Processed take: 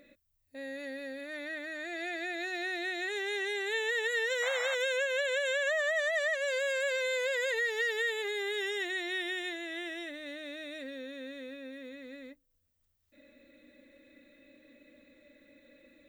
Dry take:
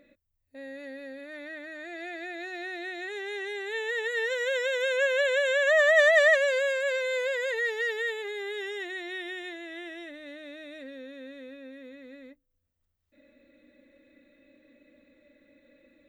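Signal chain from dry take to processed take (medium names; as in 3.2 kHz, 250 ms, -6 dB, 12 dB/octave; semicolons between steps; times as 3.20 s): painted sound noise, 4.42–4.75 s, 580–2300 Hz -37 dBFS; compression 12:1, threshold -29 dBFS, peak gain reduction 14 dB; treble shelf 3.1 kHz +7.5 dB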